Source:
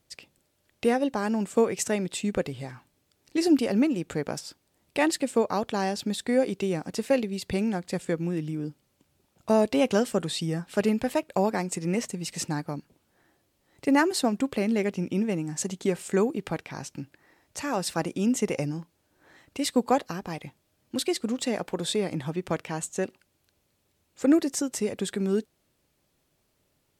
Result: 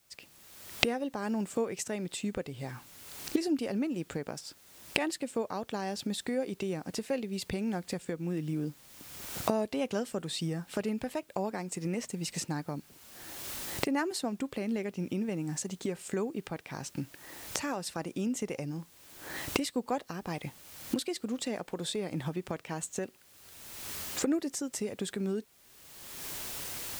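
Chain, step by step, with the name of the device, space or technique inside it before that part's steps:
cheap recorder with automatic gain (white noise bed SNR 32 dB; camcorder AGC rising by 32 dB per second)
level −9.5 dB

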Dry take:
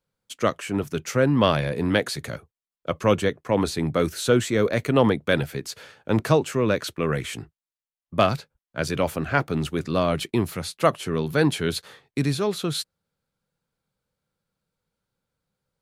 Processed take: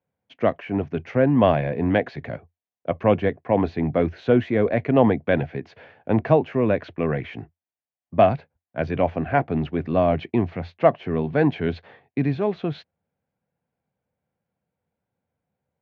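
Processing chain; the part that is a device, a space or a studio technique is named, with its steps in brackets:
bass cabinet (loudspeaker in its box 79–2,400 Hz, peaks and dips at 86 Hz +7 dB, 250 Hz +4 dB, 710 Hz +9 dB, 1,300 Hz −9 dB)
high shelf with overshoot 7,800 Hz −8 dB, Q 3

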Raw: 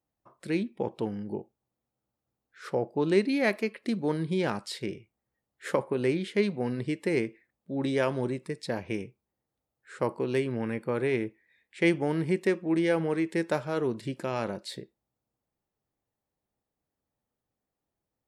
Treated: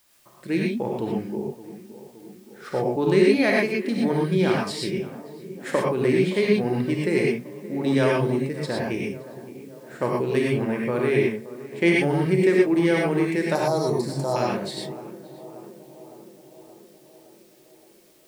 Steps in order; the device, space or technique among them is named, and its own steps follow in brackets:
0:13.55–0:14.36: drawn EQ curve 160 Hz 0 dB, 310 Hz −5 dB, 840 Hz +8 dB, 2,700 Hz −28 dB, 4,200 Hz +10 dB
plain cassette with noise reduction switched in (one half of a high-frequency compander decoder only; tape wow and flutter 22 cents; white noise bed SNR 35 dB)
tape delay 569 ms, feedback 76%, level −15 dB, low-pass 1,200 Hz
reverb whose tail is shaped and stops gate 140 ms rising, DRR −2.5 dB
level +2.5 dB

